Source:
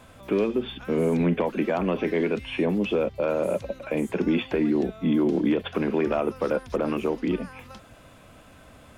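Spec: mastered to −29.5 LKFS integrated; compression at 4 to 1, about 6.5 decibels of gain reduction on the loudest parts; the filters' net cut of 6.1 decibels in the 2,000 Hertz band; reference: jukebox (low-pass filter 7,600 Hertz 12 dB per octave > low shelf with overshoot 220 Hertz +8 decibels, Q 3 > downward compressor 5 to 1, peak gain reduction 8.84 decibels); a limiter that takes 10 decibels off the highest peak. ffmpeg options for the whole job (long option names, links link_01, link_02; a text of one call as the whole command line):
ffmpeg -i in.wav -af "equalizer=frequency=2000:width_type=o:gain=-8,acompressor=threshold=-27dB:ratio=4,alimiter=level_in=3dB:limit=-24dB:level=0:latency=1,volume=-3dB,lowpass=7600,lowshelf=frequency=220:width_type=q:width=3:gain=8,acompressor=threshold=-29dB:ratio=5,volume=6dB" out.wav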